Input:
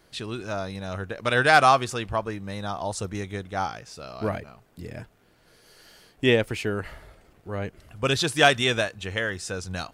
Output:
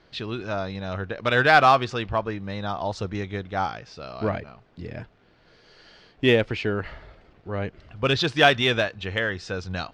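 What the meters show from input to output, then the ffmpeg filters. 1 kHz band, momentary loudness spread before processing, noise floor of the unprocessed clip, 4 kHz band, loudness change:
+1.0 dB, 18 LU, -60 dBFS, +1.0 dB, +1.0 dB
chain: -filter_complex "[0:a]lowpass=f=4.8k:w=0.5412,lowpass=f=4.8k:w=1.3066,asplit=2[a][b];[b]volume=20dB,asoftclip=hard,volume=-20dB,volume=-11.5dB[c];[a][c]amix=inputs=2:normalize=0"

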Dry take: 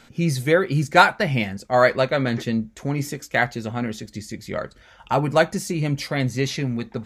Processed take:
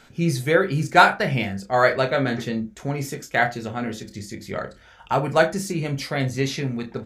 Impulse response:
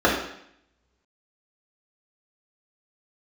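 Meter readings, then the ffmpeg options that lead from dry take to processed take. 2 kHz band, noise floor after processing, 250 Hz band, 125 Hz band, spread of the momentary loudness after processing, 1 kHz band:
+0.5 dB, -50 dBFS, -1.5 dB, -1.5 dB, 14 LU, +0.5 dB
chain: -filter_complex "[0:a]asplit=2[a][b];[b]adelay=30,volume=-9dB[c];[a][c]amix=inputs=2:normalize=0,asplit=2[d][e];[1:a]atrim=start_sample=2205,atrim=end_sample=3969[f];[e][f]afir=irnorm=-1:irlink=0,volume=-30dB[g];[d][g]amix=inputs=2:normalize=0,volume=-1.5dB"

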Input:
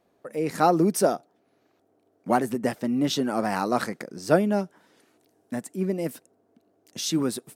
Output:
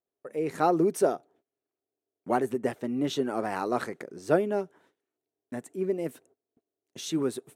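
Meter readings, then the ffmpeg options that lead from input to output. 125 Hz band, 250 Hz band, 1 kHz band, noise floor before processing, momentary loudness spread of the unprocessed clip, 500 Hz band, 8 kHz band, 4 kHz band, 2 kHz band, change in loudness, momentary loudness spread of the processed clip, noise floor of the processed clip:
-7.0 dB, -5.0 dB, -4.5 dB, -68 dBFS, 14 LU, -2.0 dB, -8.5 dB, -7.5 dB, -4.5 dB, -3.5 dB, 15 LU, under -85 dBFS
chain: -af "highshelf=f=9.9k:g=-8,agate=range=-22dB:threshold=-56dB:ratio=16:detection=peak,equalizer=f=200:t=o:w=0.33:g=-7,equalizer=f=400:t=o:w=0.33:g=7,equalizer=f=5k:t=o:w=0.33:g=-8,volume=-4.5dB"

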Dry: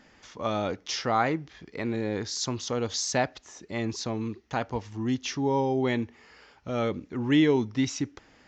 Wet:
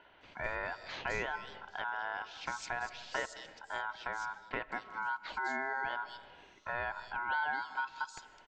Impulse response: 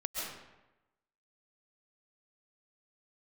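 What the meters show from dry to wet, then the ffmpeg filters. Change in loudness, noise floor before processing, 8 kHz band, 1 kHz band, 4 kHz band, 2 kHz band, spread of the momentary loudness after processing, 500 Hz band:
-9.5 dB, -59 dBFS, -18.0 dB, -4.5 dB, -12.0 dB, +1.0 dB, 7 LU, -15.5 dB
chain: -filter_complex "[0:a]highpass=120,lowpass=5.7k,aemphasis=mode=reproduction:type=50fm,aeval=exprs='val(0)*sin(2*PI*1200*n/s)':c=same,equalizer=f=160:t=o:w=2.2:g=-3,acrossover=split=4000[a][b];[b]adelay=210[c];[a][c]amix=inputs=2:normalize=0,asplit=2[d][e];[1:a]atrim=start_sample=2205,lowshelf=f=380:g=9.5[f];[e][f]afir=irnorm=-1:irlink=0,volume=-22dB[g];[d][g]amix=inputs=2:normalize=0,acompressor=threshold=-36dB:ratio=2.5"

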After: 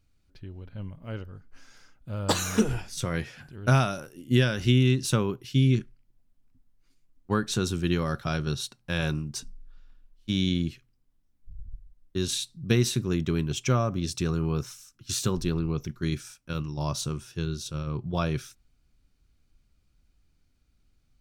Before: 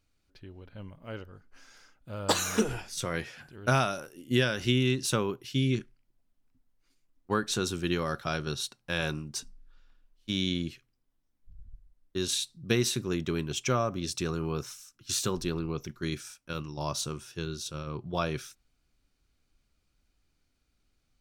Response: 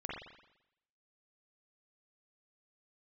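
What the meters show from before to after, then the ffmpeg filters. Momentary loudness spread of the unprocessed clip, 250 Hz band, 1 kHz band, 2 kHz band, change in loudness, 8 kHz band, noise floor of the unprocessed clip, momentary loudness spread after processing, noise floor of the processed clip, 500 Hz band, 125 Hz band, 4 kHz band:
16 LU, +4.5 dB, 0.0 dB, 0.0 dB, +3.0 dB, 0.0 dB, -75 dBFS, 16 LU, -68 dBFS, +1.0 dB, +7.5 dB, 0.0 dB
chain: -af "bass=f=250:g=8,treble=f=4k:g=0"

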